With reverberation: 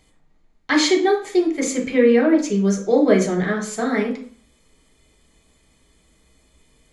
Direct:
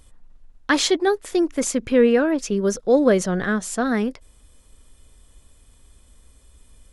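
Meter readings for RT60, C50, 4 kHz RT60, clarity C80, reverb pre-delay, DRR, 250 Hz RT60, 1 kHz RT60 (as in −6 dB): 0.45 s, 9.0 dB, 0.45 s, 14.0 dB, 3 ms, 0.5 dB, 0.50 s, 0.45 s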